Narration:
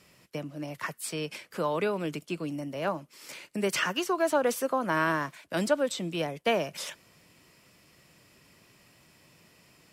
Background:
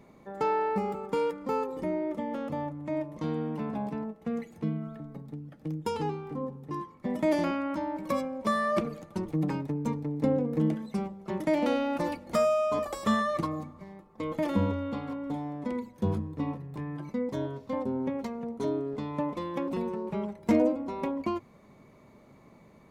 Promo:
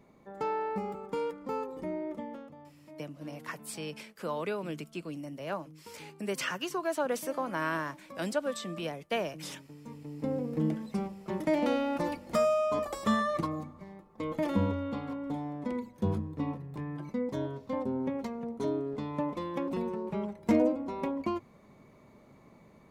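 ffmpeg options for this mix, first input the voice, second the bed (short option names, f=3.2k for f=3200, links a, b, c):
-filter_complex "[0:a]adelay=2650,volume=-5.5dB[a];[1:a]volume=12dB,afade=t=out:st=2.17:d=0.37:silence=0.211349,afade=t=in:st=9.81:d=1.02:silence=0.141254[b];[a][b]amix=inputs=2:normalize=0"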